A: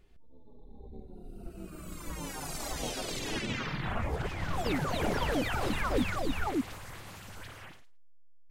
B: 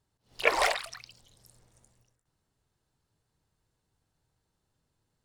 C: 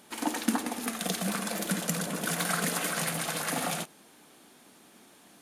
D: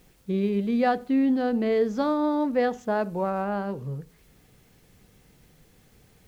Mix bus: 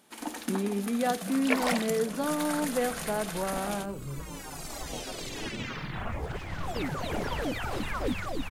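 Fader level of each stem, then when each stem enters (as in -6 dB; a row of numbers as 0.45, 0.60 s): -1.5, -4.0, -6.0, -5.5 dB; 2.10, 1.05, 0.00, 0.20 s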